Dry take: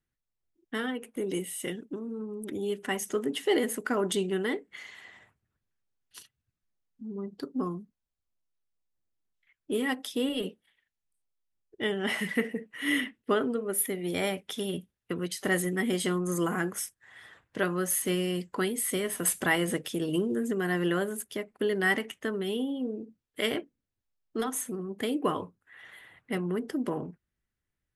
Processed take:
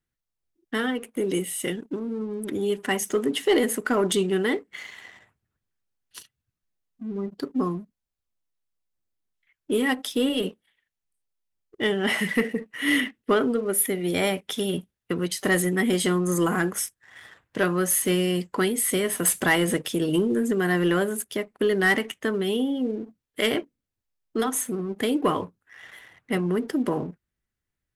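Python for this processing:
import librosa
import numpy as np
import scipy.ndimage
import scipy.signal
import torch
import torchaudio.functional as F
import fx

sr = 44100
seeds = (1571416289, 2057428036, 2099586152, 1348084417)

y = fx.leveller(x, sr, passes=1)
y = y * 10.0 ** (2.5 / 20.0)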